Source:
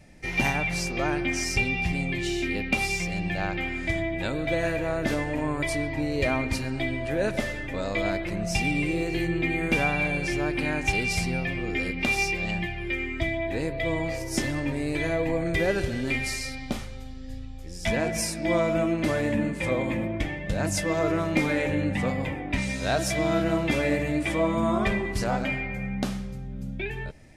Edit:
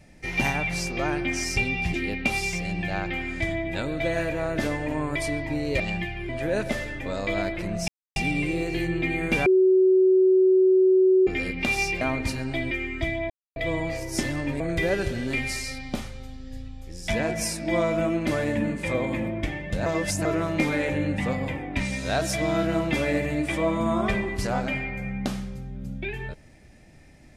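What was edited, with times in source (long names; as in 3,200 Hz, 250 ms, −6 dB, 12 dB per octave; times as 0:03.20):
0:01.94–0:02.41: remove
0:06.27–0:06.97: swap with 0:12.41–0:12.90
0:08.56: splice in silence 0.28 s
0:09.86–0:11.67: beep over 375 Hz −14.5 dBFS
0:13.49–0:13.75: silence
0:14.79–0:15.37: remove
0:20.63–0:21.02: reverse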